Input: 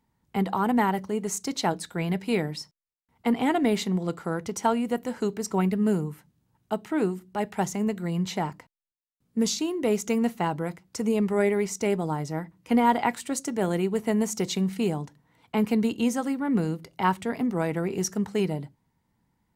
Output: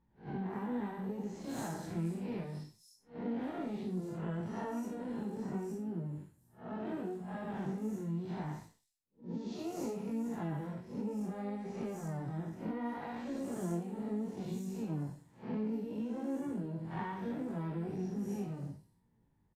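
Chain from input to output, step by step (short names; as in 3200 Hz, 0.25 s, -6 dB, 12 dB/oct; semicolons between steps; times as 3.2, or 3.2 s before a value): time blur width 0.179 s; tilt shelf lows +5 dB, about 670 Hz; comb 1.2 ms, depth 33%; compressor 16:1, threshold -31 dBFS, peak gain reduction 14.5 dB; harmoniser +4 st -13 dB, +12 st -9 dB; chorus 0.68 Hz, delay 17.5 ms, depth 7.2 ms; bands offset in time lows, highs 0.26 s, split 5100 Hz; gain -2 dB; AAC 64 kbps 32000 Hz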